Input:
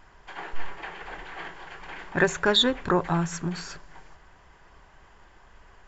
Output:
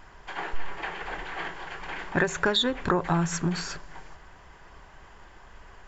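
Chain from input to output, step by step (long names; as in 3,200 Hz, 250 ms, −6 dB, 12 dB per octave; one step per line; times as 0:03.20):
downward compressor 10 to 1, threshold −24 dBFS, peak gain reduction 9 dB
level +4 dB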